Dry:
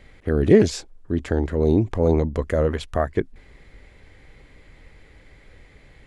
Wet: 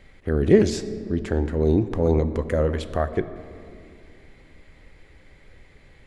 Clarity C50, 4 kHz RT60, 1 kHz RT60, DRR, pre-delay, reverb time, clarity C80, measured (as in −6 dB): 12.5 dB, 1.4 s, 2.2 s, 10.5 dB, 5 ms, 2.4 s, 13.5 dB